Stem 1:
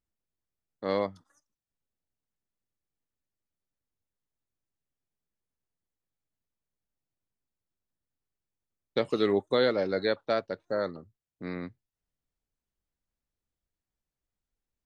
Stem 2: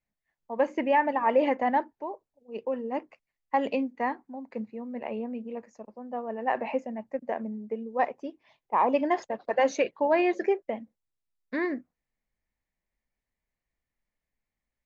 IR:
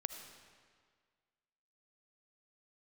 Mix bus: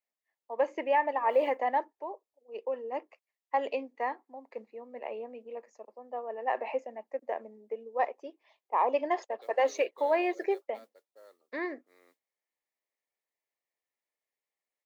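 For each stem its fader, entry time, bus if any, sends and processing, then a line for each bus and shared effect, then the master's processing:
−14.0 dB, 0.45 s, no send, noise that follows the level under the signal 20 dB; automatic ducking −11 dB, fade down 1.95 s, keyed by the second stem
−3.5 dB, 0.00 s, no send, low-shelf EQ 260 Hz +8 dB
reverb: not used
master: high-pass filter 400 Hz 24 dB per octave; notch filter 1,500 Hz, Q 8.5

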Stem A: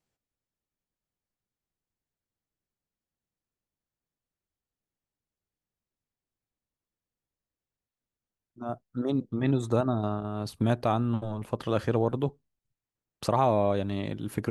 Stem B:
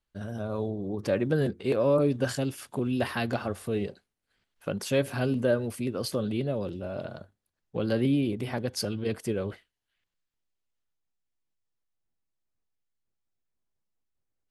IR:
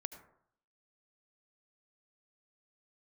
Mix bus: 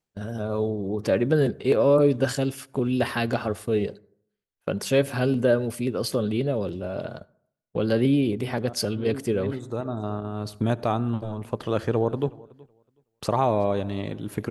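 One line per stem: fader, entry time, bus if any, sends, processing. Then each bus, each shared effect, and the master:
−1.0 dB, 0.00 s, send −7.5 dB, echo send −21.5 dB, automatic ducking −18 dB, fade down 0.25 s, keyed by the second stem
+2.5 dB, 0.00 s, send −12.5 dB, no echo send, noise gate −41 dBFS, range −22 dB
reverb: on, RT60 0.65 s, pre-delay 68 ms
echo: repeating echo 372 ms, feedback 16%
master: parametric band 430 Hz +3.5 dB 0.25 octaves

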